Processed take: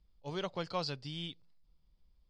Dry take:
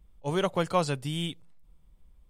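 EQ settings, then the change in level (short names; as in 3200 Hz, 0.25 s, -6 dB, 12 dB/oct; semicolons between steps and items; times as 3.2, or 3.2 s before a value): ladder low-pass 5100 Hz, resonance 75%; +1.0 dB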